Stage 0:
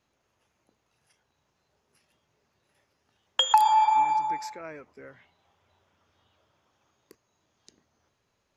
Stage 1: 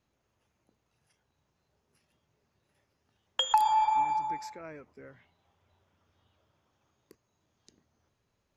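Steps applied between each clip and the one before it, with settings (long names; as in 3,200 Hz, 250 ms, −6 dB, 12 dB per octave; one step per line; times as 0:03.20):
low-shelf EQ 290 Hz +7.5 dB
level −5.5 dB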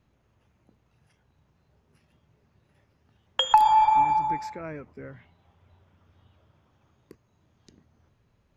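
bass and treble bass +7 dB, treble −8 dB
level +6.5 dB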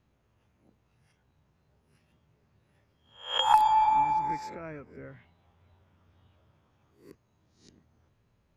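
peak hold with a rise ahead of every peak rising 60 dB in 0.43 s
level −4.5 dB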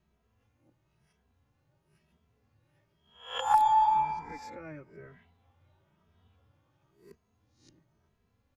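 barber-pole flanger 2.7 ms +1 Hz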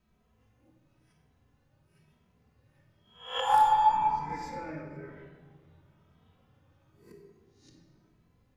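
rectangular room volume 1,400 cubic metres, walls mixed, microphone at 2 metres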